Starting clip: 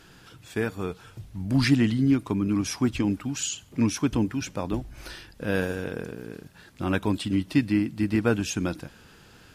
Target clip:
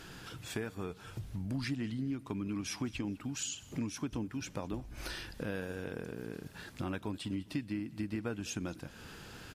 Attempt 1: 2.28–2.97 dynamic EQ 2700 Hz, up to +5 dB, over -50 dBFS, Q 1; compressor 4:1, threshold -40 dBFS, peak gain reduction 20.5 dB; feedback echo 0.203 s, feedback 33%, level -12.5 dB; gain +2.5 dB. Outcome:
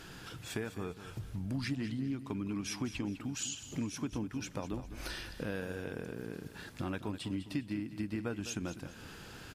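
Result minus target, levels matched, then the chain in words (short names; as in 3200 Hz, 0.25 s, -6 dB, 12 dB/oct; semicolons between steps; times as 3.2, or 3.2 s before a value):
echo-to-direct +10 dB
2.28–2.97 dynamic EQ 2700 Hz, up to +5 dB, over -50 dBFS, Q 1; compressor 4:1, threshold -40 dBFS, peak gain reduction 20.5 dB; feedback echo 0.203 s, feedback 33%, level -22.5 dB; gain +2.5 dB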